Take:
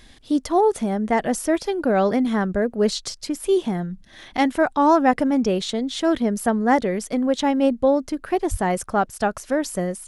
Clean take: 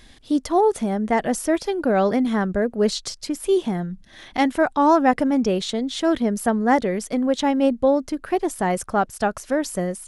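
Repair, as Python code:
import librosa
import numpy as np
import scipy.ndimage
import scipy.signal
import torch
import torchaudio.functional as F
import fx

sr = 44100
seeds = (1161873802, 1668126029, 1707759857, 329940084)

y = fx.fix_deplosive(x, sr, at_s=(8.5,))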